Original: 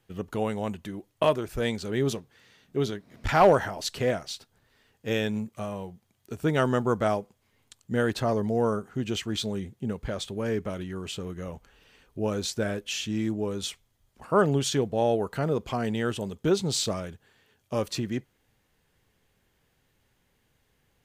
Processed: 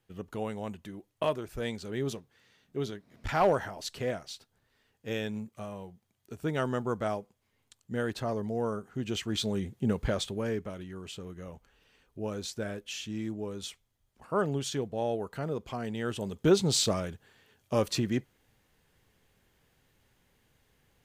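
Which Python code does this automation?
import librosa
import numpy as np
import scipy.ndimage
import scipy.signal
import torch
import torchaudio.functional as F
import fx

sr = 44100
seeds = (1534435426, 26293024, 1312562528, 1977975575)

y = fx.gain(x, sr, db=fx.line((8.73, -6.5), (10.02, 4.0), (10.72, -7.0), (15.93, -7.0), (16.46, 1.0)))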